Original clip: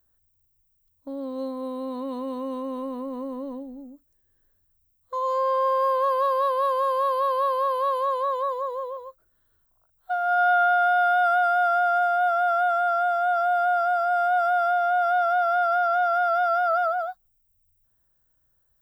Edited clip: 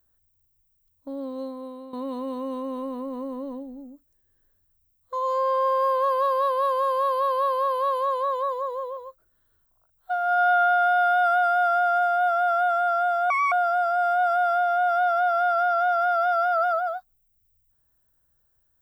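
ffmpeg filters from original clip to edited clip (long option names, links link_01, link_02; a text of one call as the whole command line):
ffmpeg -i in.wav -filter_complex "[0:a]asplit=4[link_01][link_02][link_03][link_04];[link_01]atrim=end=1.93,asetpts=PTS-STARTPTS,afade=type=out:start_time=1.2:duration=0.73:silence=0.251189[link_05];[link_02]atrim=start=1.93:end=13.304,asetpts=PTS-STARTPTS,afade=type=in:duration=0.004:curve=hsin:silence=0.251189[link_06];[link_03]atrim=start=13.3:end=13.65,asetpts=PTS-STARTPTS,asetrate=70560,aresample=44100[link_07];[link_04]atrim=start=13.646[link_08];[link_05][link_06]concat=n=2:v=0:a=1[link_09];[link_09][link_07]acrossfade=duration=0.004:curve1=hsin:curve2=hsin[link_10];[link_10][link_08]acrossfade=duration=0.004:curve1=hsin:curve2=hsin" out.wav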